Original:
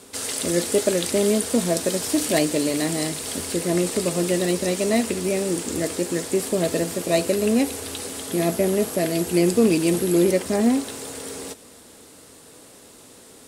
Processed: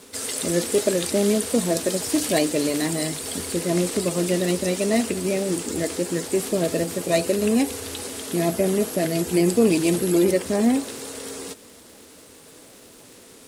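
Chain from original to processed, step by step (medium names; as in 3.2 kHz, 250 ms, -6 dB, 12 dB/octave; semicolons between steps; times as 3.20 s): coarse spectral quantiser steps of 15 dB; crackle 480 per s -42 dBFS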